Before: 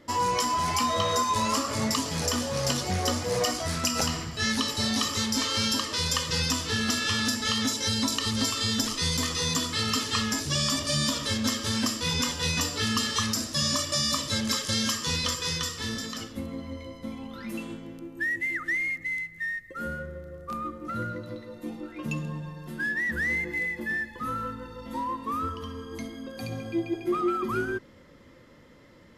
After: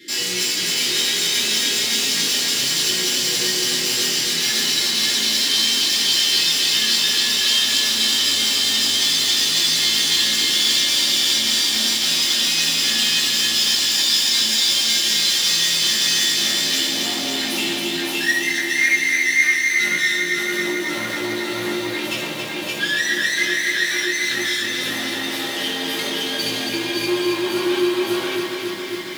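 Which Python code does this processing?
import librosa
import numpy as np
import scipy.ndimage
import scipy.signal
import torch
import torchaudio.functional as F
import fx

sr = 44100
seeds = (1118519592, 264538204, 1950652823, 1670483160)

p1 = scipy.signal.sosfilt(scipy.signal.ellip(3, 1.0, 40, [410.0, 1700.0], 'bandstop', fs=sr, output='sos'), x)
p2 = fx.high_shelf(p1, sr, hz=7900.0, db=7.5)
p3 = p2 + fx.echo_single(p2, sr, ms=573, db=-3.0, dry=0)
p4 = fx.rider(p3, sr, range_db=10, speed_s=0.5)
p5 = np.clip(p4, -10.0 ** (-32.0 / 20.0), 10.0 ** (-32.0 / 20.0))
p6 = scipy.signal.sosfilt(scipy.signal.butter(4, 200.0, 'highpass', fs=sr, output='sos'), p5)
p7 = fx.peak_eq(p6, sr, hz=3500.0, db=11.0, octaves=1.2)
p8 = fx.rev_fdn(p7, sr, rt60_s=0.72, lf_ratio=0.75, hf_ratio=0.9, size_ms=50.0, drr_db=-7.5)
y = fx.echo_crushed(p8, sr, ms=274, feedback_pct=80, bits=7, wet_db=-5.0)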